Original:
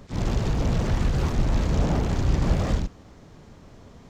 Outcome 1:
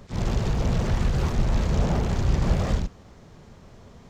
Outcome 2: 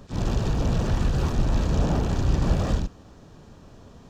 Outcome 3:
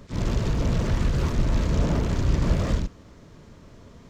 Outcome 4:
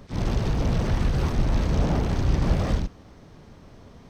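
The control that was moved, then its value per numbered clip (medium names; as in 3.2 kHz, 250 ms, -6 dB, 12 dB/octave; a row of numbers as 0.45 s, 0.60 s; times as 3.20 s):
band-stop, frequency: 290 Hz, 2.1 kHz, 780 Hz, 7.1 kHz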